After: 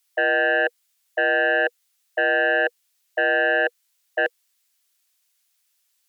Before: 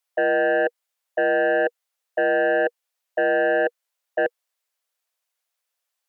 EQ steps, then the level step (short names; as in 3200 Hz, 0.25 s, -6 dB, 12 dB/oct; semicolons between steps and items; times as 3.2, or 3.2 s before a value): brick-wall FIR high-pass 210 Hz; tilt shelf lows -9 dB, about 1400 Hz; +3.5 dB